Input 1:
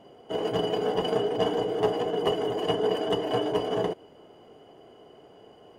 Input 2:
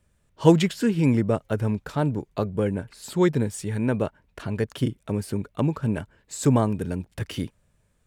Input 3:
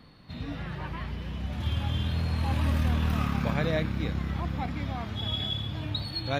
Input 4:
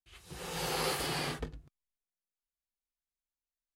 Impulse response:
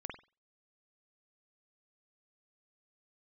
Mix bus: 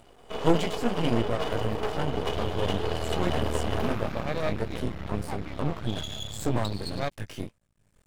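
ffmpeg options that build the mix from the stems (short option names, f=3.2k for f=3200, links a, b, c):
-filter_complex "[0:a]highpass=f=450:p=1,asoftclip=type=tanh:threshold=-19dB,volume=2.5dB[a];[1:a]acompressor=mode=upward:threshold=-41dB:ratio=2.5,flanger=delay=17:depth=3.9:speed=1.7,volume=0dB,asplit=2[b][c];[2:a]equalizer=f=600:t=o:w=0.9:g=7,adelay=700,volume=-1.5dB[d];[3:a]acrusher=bits=3:mix=0:aa=0.5,adelay=850,volume=-6dB[e];[c]apad=whole_len=203252[f];[e][f]sidechaincompress=threshold=-28dB:ratio=8:attack=16:release=390[g];[a][b][d][g]amix=inputs=4:normalize=0,aeval=exprs='max(val(0),0)':c=same"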